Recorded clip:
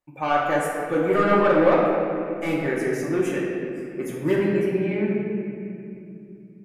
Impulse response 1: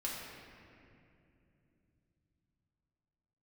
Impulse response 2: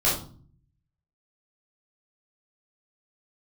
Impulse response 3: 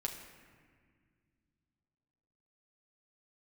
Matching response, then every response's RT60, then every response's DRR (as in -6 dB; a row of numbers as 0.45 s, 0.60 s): 1; 2.8 s, 0.45 s, 1.8 s; -5.5 dB, -8.0 dB, 0.5 dB